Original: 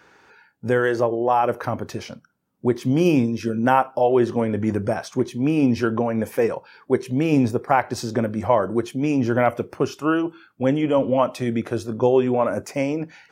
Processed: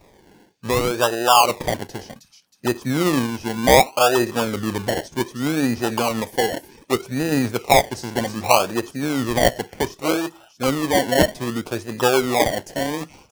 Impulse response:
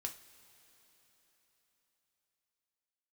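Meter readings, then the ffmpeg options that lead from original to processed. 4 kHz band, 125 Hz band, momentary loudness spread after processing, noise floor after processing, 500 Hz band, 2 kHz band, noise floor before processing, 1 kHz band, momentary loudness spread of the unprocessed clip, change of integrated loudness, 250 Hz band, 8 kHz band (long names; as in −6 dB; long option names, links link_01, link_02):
+13.5 dB, −2.0 dB, 11 LU, −54 dBFS, 0.0 dB, +5.0 dB, −59 dBFS, +3.0 dB, 7 LU, +1.0 dB, −2.0 dB, +14.0 dB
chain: -filter_complex "[0:a]equalizer=frequency=880:width=1.3:gain=9.5,acrossover=split=3300[link_01][link_02];[link_01]acrusher=samples=28:mix=1:aa=0.000001:lfo=1:lforange=16.8:lforate=0.65[link_03];[link_02]aecho=1:1:316|632|948|1264|1580:0.562|0.247|0.109|0.0479|0.0211[link_04];[link_03][link_04]amix=inputs=2:normalize=0,volume=-3dB"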